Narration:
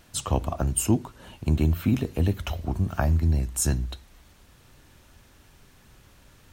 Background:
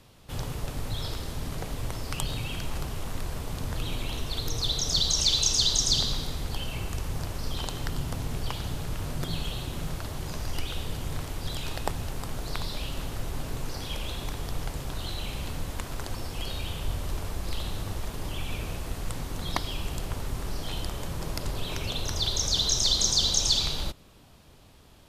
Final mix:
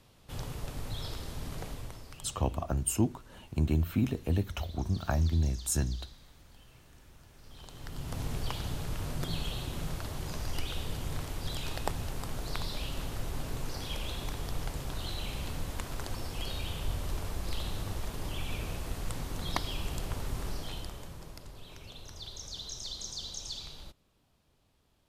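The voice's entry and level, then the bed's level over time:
2.10 s, -5.5 dB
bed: 1.67 s -5.5 dB
2.61 s -26.5 dB
7.27 s -26.5 dB
8.21 s -3 dB
20.47 s -3 dB
21.48 s -16.5 dB

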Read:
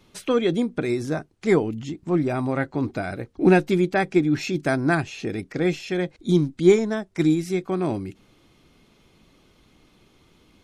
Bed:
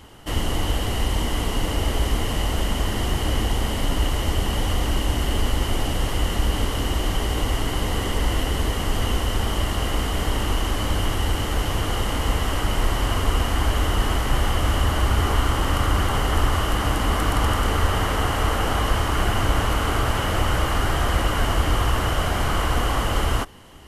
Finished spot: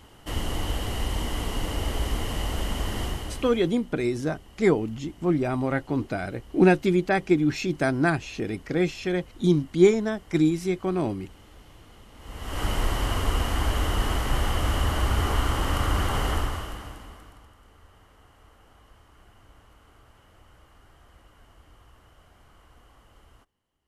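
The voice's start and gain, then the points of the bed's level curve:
3.15 s, -1.5 dB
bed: 3.04 s -5.5 dB
3.86 s -27.5 dB
12.12 s -27.5 dB
12.63 s -4 dB
16.30 s -4 dB
17.52 s -34 dB

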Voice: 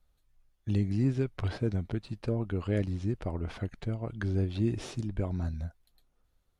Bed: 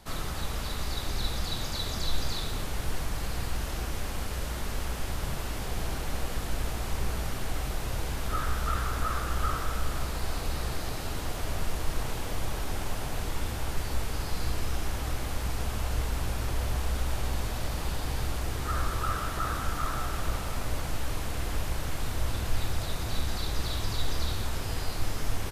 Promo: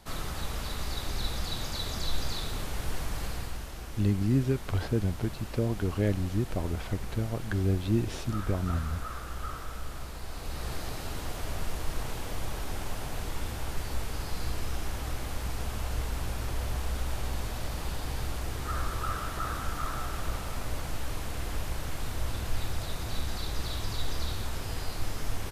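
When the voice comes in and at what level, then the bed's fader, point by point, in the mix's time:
3.30 s, +2.0 dB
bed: 3.26 s -1.5 dB
3.71 s -8 dB
10.28 s -8 dB
10.72 s -2.5 dB

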